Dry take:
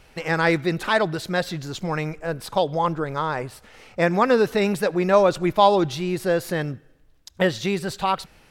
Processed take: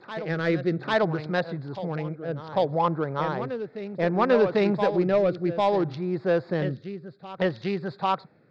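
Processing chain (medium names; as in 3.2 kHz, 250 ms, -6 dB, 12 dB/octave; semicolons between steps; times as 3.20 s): local Wiener filter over 15 samples; elliptic band-pass 120–4700 Hz, stop band 40 dB; saturation -8 dBFS, distortion -20 dB; reverse echo 796 ms -9.5 dB; rotary cabinet horn 0.6 Hz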